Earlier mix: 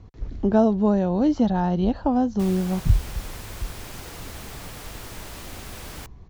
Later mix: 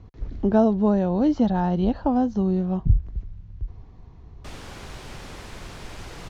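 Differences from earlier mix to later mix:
background: entry +2.05 s
master: add high-frequency loss of the air 64 metres

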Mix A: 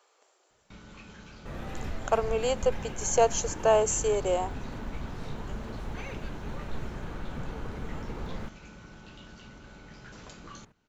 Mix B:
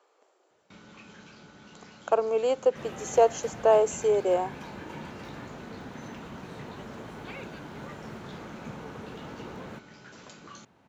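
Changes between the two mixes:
speech: add spectral tilt −3 dB per octave
second sound: entry +1.30 s
master: add high-pass filter 150 Hz 12 dB per octave

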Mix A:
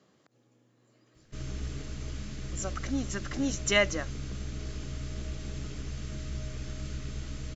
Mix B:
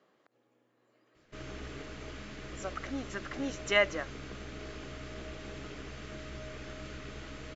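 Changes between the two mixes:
background +4.5 dB
master: add bass and treble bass −15 dB, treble −14 dB

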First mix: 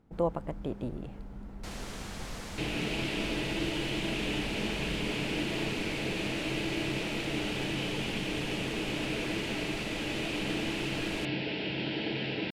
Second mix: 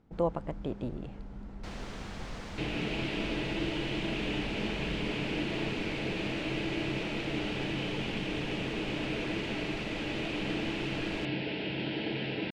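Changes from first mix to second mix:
speech: remove low-pass filter 2,900 Hz 6 dB per octave
first sound: remove low-pass filter 8,400 Hz 12 dB per octave
master: add high-frequency loss of the air 120 metres

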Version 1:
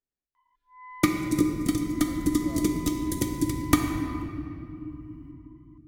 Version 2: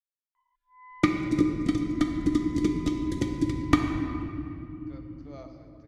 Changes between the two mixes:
speech: entry +2.85 s
first sound −4.5 dB
master: add low-pass filter 4,000 Hz 12 dB per octave

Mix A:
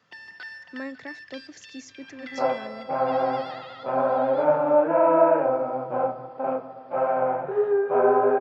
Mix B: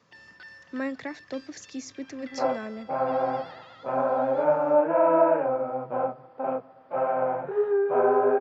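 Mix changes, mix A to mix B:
speech +4.5 dB
first sound −7.5 dB
second sound: send −11.5 dB

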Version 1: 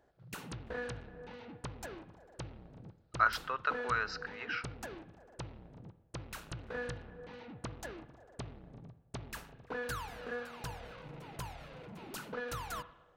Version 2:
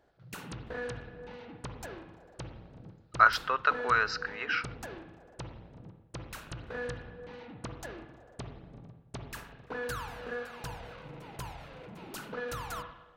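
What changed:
speech +7.0 dB
background: send +9.0 dB

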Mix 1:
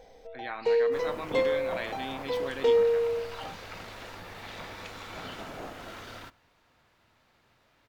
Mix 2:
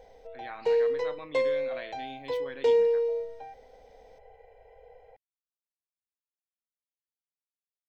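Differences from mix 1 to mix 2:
speech −5.5 dB
second sound: muted

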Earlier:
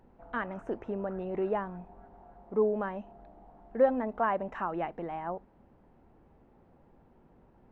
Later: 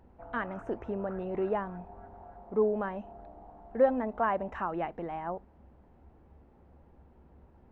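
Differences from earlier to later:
background +5.0 dB
master: add parametric band 69 Hz +15 dB 0.4 octaves

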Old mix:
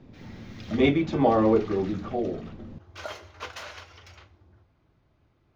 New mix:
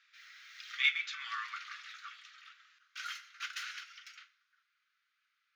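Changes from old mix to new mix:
speech: send on
master: add Butterworth high-pass 1,300 Hz 72 dB per octave

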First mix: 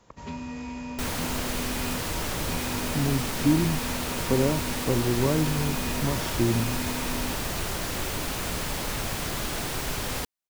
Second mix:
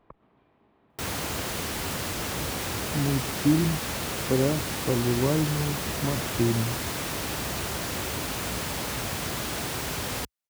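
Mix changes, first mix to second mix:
speech: add Gaussian smoothing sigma 3.3 samples
first sound: muted
second sound: add high-pass filter 56 Hz 24 dB per octave

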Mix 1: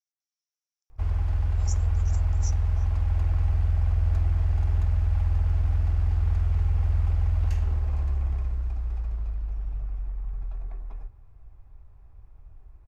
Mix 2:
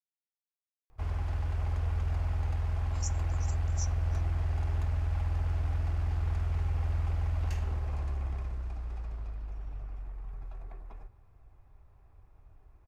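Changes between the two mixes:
speech: entry +1.35 s
master: add low-shelf EQ 94 Hz −11 dB

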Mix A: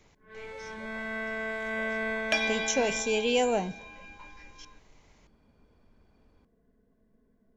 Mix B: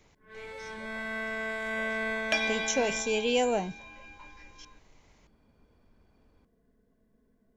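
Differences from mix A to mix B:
first sound: add high-shelf EQ 3,800 Hz +8 dB
reverb: off

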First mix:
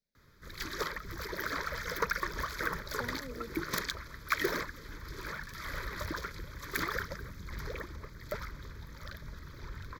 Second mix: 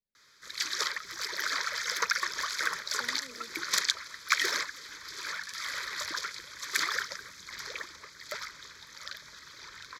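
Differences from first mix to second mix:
speech −7.0 dB
background: add meter weighting curve ITU-R 468

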